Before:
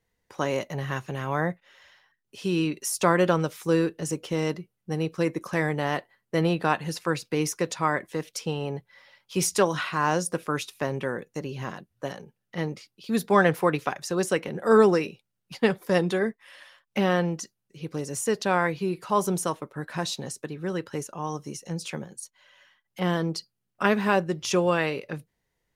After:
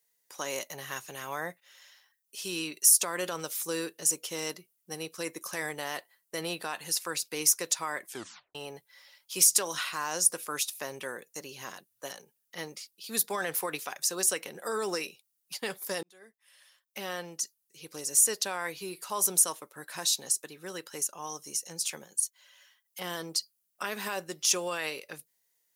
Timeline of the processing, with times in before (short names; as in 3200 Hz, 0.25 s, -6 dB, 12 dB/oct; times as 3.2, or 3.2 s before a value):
8.08 tape stop 0.47 s
16.03–17.91 fade in
whole clip: tone controls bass -3 dB, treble +5 dB; limiter -14.5 dBFS; RIAA curve recording; gain -6.5 dB